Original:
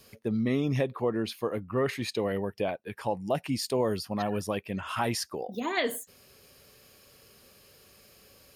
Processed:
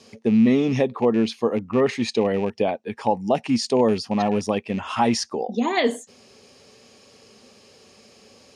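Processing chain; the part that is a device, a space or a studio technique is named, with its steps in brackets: car door speaker with a rattle (rattle on loud lows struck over -32 dBFS, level -34 dBFS; cabinet simulation 100–7900 Hz, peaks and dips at 150 Hz -5 dB, 230 Hz +9 dB, 440 Hz +4 dB, 820 Hz +6 dB, 1.5 kHz -5 dB, 6 kHz +4 dB); trim +5.5 dB

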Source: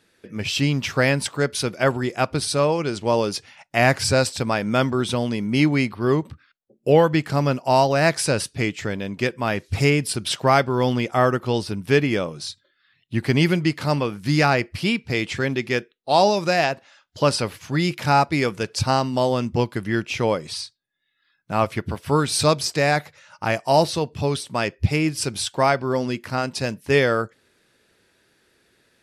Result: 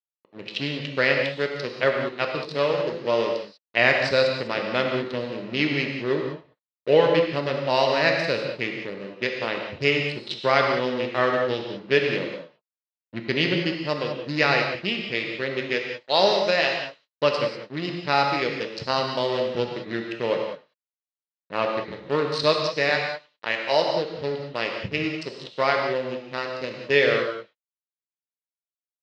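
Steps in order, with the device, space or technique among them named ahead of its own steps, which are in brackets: local Wiener filter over 41 samples; 22.89–23.86 s: high-pass 280 Hz 6 dB/octave; feedback delay 99 ms, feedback 55%, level -18 dB; blown loudspeaker (crossover distortion -34 dBFS; cabinet simulation 220–5400 Hz, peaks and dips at 250 Hz -4 dB, 530 Hz +5 dB, 760 Hz -5 dB, 1.9 kHz +6 dB, 2.8 kHz +6 dB, 4 kHz +10 dB); gated-style reverb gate 220 ms flat, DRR 2 dB; trim -3 dB

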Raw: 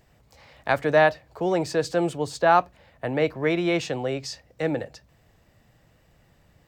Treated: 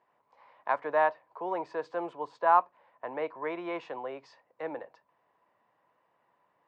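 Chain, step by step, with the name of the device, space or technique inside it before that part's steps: tin-can telephone (band-pass 410–2000 Hz; small resonant body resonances 1 kHz, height 16 dB, ringing for 25 ms); trim -9 dB

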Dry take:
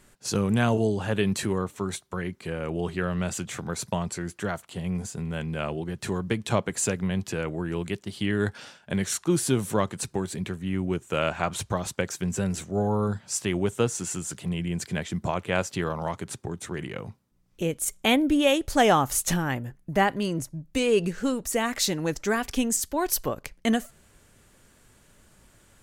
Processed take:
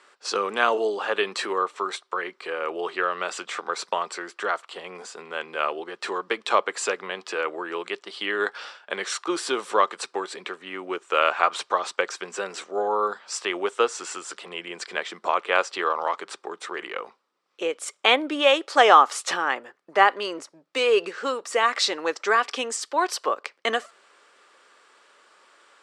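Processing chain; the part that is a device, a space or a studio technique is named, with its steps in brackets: phone speaker on a table (cabinet simulation 430–6800 Hz, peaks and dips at 640 Hz -4 dB, 1.2 kHz +8 dB, 6.5 kHz -9 dB); trim +5.5 dB

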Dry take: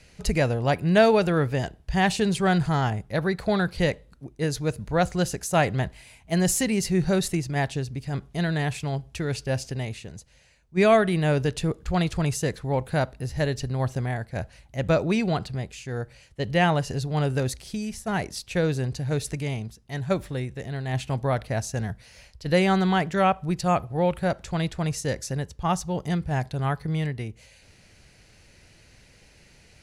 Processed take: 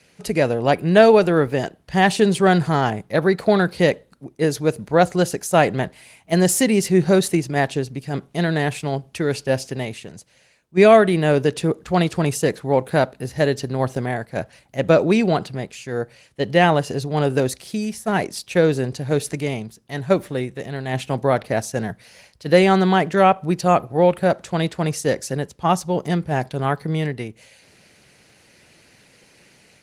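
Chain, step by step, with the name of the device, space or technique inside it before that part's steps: dynamic bell 380 Hz, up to +4 dB, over -34 dBFS, Q 0.82; video call (high-pass 170 Hz 12 dB/octave; level rider gain up to 4 dB; trim +2 dB; Opus 24 kbps 48 kHz)

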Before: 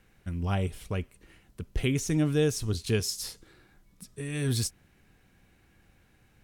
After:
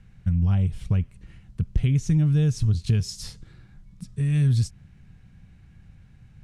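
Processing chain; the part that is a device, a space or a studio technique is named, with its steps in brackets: jukebox (low-pass 7.8 kHz 12 dB/octave; resonant low shelf 230 Hz +13 dB, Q 1.5; compression 5:1, threshold -18 dBFS, peak gain reduction 8 dB)

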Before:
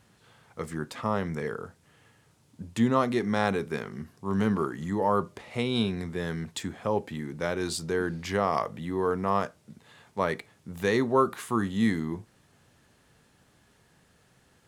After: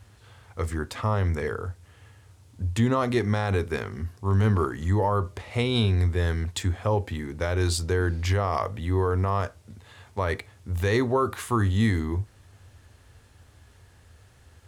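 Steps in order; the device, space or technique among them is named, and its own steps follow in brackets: car stereo with a boomy subwoofer (resonant low shelf 120 Hz +9 dB, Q 3; peak limiter -17.5 dBFS, peak gain reduction 7.5 dB); trim +4 dB

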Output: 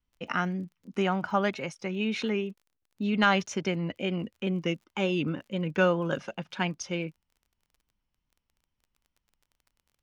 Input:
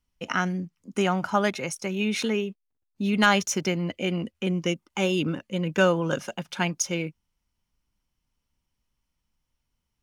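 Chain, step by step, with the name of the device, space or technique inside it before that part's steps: lo-fi chain (low-pass 4 kHz 12 dB/octave; wow and flutter; crackle 25 per s -46 dBFS); trim -3 dB

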